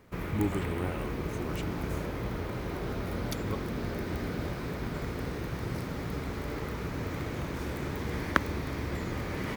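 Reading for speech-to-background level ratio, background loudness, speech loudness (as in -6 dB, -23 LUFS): -2.5 dB, -35.0 LUFS, -37.5 LUFS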